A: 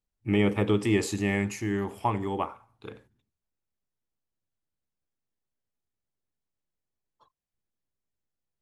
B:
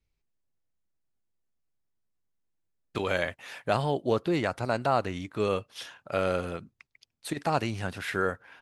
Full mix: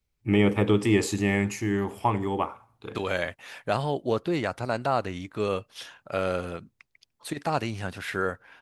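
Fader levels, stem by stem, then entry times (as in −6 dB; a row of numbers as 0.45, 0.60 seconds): +2.5, 0.0 decibels; 0.00, 0.00 seconds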